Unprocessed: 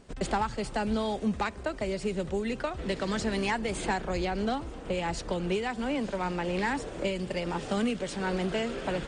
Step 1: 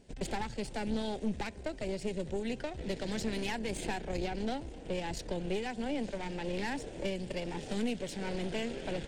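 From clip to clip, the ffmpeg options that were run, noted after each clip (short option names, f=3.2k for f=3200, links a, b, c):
-af "aeval=exprs='(tanh(22.4*val(0)+0.75)-tanh(0.75))/22.4':c=same,equalizer=f=1.2k:w=2.6:g=-14.5"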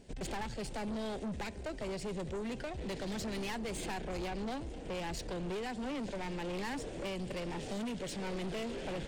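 -af "asoftclip=type=tanh:threshold=-37.5dB,volume=3dB"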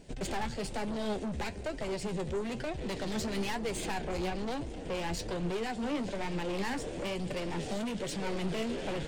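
-af "flanger=delay=5.8:depth=8.3:regen=50:speed=1.1:shape=triangular,volume=8dB"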